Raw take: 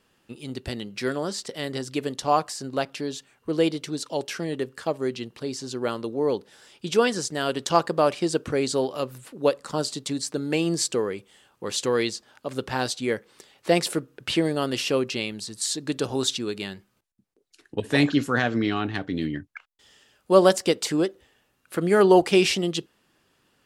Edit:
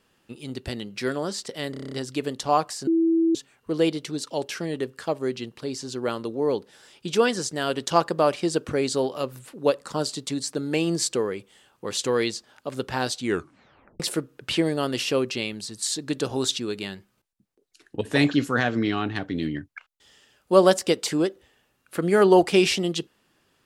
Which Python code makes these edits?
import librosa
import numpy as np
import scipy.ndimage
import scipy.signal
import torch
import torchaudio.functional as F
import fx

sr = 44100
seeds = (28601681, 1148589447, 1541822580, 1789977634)

y = fx.edit(x, sr, fx.stutter(start_s=1.71, slice_s=0.03, count=8),
    fx.bleep(start_s=2.66, length_s=0.48, hz=329.0, db=-17.0),
    fx.tape_stop(start_s=13.01, length_s=0.78), tone=tone)